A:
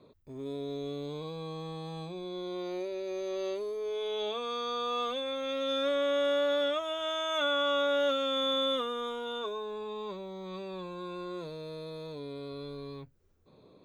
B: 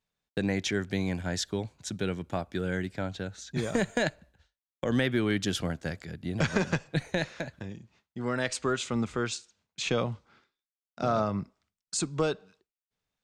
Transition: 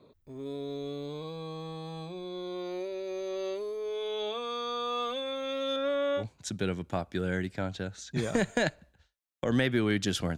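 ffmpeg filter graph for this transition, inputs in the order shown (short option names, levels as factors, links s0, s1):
-filter_complex "[0:a]asettb=1/sr,asplit=3[s0][s1][s2];[s0]atrim=end=5.764[s3];[s1]atrim=start=5.76:end=6.24,asetpts=PTS-STARTPTS,afade=t=in:d=0.004:c=qsin,afade=t=out:st=0.476:d=0.004:c=qsin,acrossover=split=2800[s4][s5];[s5]acompressor=threshold=0.00282:ratio=4:attack=1:release=60[s6];[s4][s6]amix=inputs=2:normalize=0[s7];[s2]atrim=start=6.236[s8];[s3][s7]acrossfade=d=0.004:c1=hsin:c2=qsin[s9];[s9][s8]acrossfade=d=0.004:c1=qsin:c2=hsin,apad=whole_dur=10.37,atrim=end=10.37,atrim=end=6.24,asetpts=PTS-STARTPTS[s10];[1:a]atrim=start=1.56:end=5.77,asetpts=PTS-STARTPTS[s11];[s10][s11]acrossfade=d=0.08:c1=tri:c2=tri"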